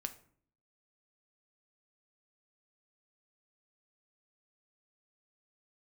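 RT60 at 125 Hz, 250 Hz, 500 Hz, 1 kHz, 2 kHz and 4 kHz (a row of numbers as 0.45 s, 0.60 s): 0.75 s, 0.80 s, 0.60 s, 0.50 s, 0.45 s, 0.35 s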